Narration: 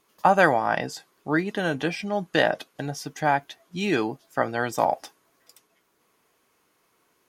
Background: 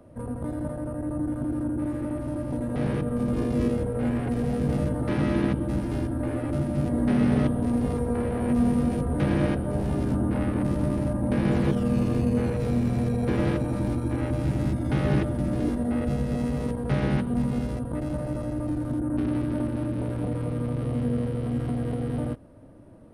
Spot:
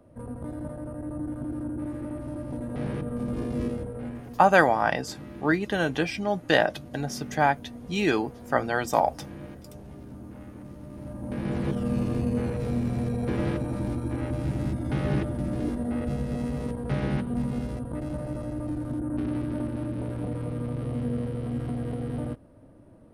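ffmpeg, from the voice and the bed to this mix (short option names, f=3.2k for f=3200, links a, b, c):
-filter_complex "[0:a]adelay=4150,volume=0dB[a];[1:a]volume=10dB,afade=t=out:st=3.61:d=0.78:silence=0.223872,afade=t=in:st=10.88:d=1.02:silence=0.188365[b];[a][b]amix=inputs=2:normalize=0"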